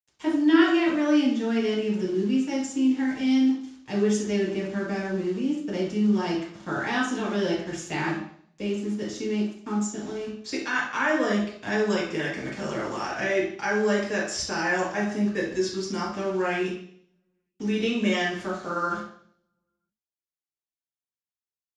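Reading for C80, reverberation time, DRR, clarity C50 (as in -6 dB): 7.5 dB, 0.60 s, -5.5 dB, 3.5 dB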